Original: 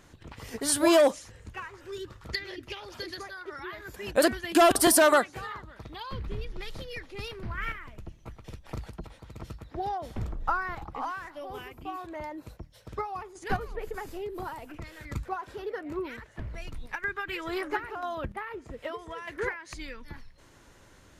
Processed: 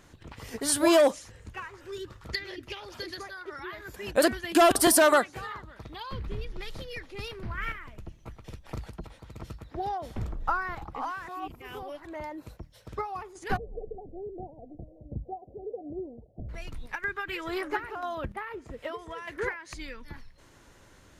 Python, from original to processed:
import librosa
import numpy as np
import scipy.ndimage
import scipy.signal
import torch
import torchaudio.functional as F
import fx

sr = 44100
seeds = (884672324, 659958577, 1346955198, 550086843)

y = fx.cheby_ripple(x, sr, hz=760.0, ripple_db=3, at=(13.57, 16.49))
y = fx.edit(y, sr, fx.reverse_span(start_s=11.28, length_s=0.77), tone=tone)